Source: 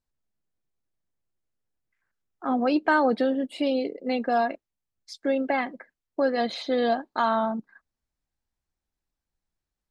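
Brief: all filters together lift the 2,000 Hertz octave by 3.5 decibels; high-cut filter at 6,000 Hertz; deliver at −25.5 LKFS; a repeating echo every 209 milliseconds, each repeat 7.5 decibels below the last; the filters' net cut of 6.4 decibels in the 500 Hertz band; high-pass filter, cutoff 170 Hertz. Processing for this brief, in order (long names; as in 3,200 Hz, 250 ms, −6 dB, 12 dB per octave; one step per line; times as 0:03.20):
high-pass filter 170 Hz
low-pass filter 6,000 Hz
parametric band 500 Hz −8 dB
parametric band 2,000 Hz +5.5 dB
repeating echo 209 ms, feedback 42%, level −7.5 dB
level +2 dB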